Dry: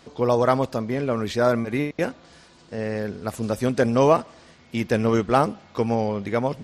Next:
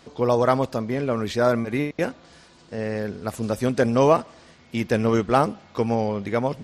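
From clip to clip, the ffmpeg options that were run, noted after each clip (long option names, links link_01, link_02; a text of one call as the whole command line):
ffmpeg -i in.wav -af anull out.wav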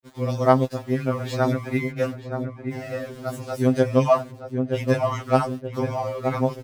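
ffmpeg -i in.wav -filter_complex "[0:a]aeval=exprs='val(0)*gte(abs(val(0)),0.01)':channel_layout=same,asplit=2[link_01][link_02];[link_02]adelay=924,lowpass=frequency=1000:poles=1,volume=-5dB,asplit=2[link_03][link_04];[link_04]adelay=924,lowpass=frequency=1000:poles=1,volume=0.46,asplit=2[link_05][link_06];[link_06]adelay=924,lowpass=frequency=1000:poles=1,volume=0.46,asplit=2[link_07][link_08];[link_08]adelay=924,lowpass=frequency=1000:poles=1,volume=0.46,asplit=2[link_09][link_10];[link_10]adelay=924,lowpass=frequency=1000:poles=1,volume=0.46,asplit=2[link_11][link_12];[link_12]adelay=924,lowpass=frequency=1000:poles=1,volume=0.46[link_13];[link_01][link_03][link_05][link_07][link_09][link_11][link_13]amix=inputs=7:normalize=0,afftfilt=real='re*2.45*eq(mod(b,6),0)':imag='im*2.45*eq(mod(b,6),0)':win_size=2048:overlap=0.75" out.wav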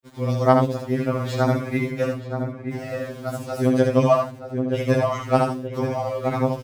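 ffmpeg -i in.wav -af "aecho=1:1:74:0.562" out.wav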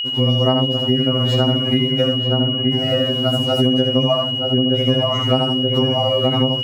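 ffmpeg -i in.wav -af "equalizer=frequency=200:width=0.32:gain=10,acompressor=threshold=-20dB:ratio=6,aeval=exprs='val(0)+0.0501*sin(2*PI*2900*n/s)':channel_layout=same,volume=5.5dB" out.wav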